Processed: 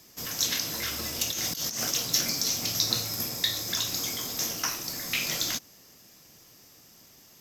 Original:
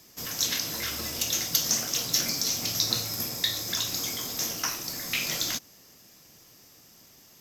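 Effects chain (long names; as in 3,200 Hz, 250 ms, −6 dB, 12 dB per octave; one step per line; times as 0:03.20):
0:01.31–0:01.91: compressor whose output falls as the input rises −32 dBFS, ratio −1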